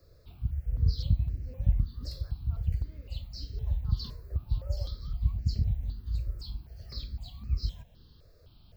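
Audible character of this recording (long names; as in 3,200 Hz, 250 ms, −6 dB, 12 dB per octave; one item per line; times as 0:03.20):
notches that jump at a steady rate 3.9 Hz 840–3,500 Hz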